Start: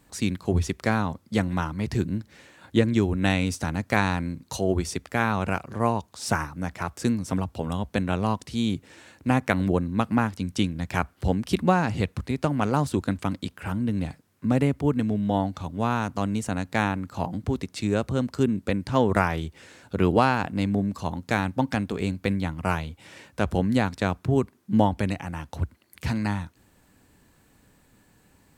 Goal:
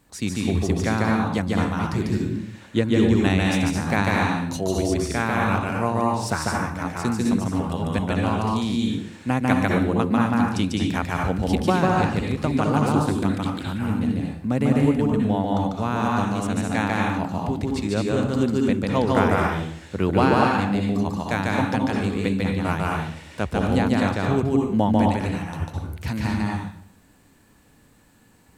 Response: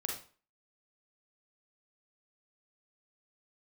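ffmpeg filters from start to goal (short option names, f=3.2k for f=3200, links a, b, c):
-filter_complex "[0:a]asplit=2[a][b];[1:a]atrim=start_sample=2205,asetrate=28665,aresample=44100,adelay=146[c];[b][c]afir=irnorm=-1:irlink=0,volume=-2dB[d];[a][d]amix=inputs=2:normalize=0,volume=-1dB"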